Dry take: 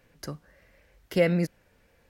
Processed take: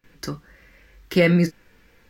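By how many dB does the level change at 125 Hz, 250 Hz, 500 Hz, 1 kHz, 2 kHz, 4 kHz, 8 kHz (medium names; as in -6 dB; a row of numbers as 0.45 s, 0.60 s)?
+8.0 dB, +8.0 dB, +4.0 dB, +4.0 dB, +8.5 dB, +8.5 dB, +6.0 dB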